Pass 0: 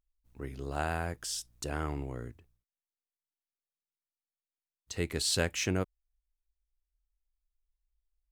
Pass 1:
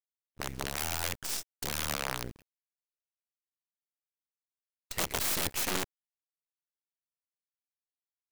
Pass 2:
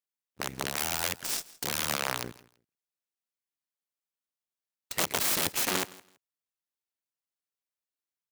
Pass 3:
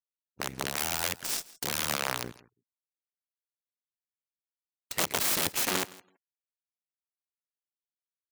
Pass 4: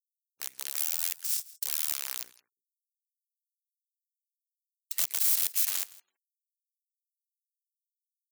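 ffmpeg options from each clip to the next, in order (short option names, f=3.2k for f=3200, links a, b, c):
-af "aeval=exprs='(mod(28.2*val(0)+1,2)-1)/28.2':c=same,acrusher=bits=6:dc=4:mix=0:aa=0.000001,agate=range=-33dB:threshold=-48dB:ratio=3:detection=peak,volume=4dB"
-filter_complex "[0:a]highpass=120,asplit=2[a][b];[b]aeval=exprs='sgn(val(0))*max(abs(val(0))-0.00708,0)':c=same,volume=-5dB[c];[a][c]amix=inputs=2:normalize=0,aecho=1:1:165|330:0.0891|0.0178"
-af "afftfilt=real='re*gte(hypot(re,im),0.000891)':imag='im*gte(hypot(re,im),0.000891)':win_size=1024:overlap=0.75"
-af "aderivative"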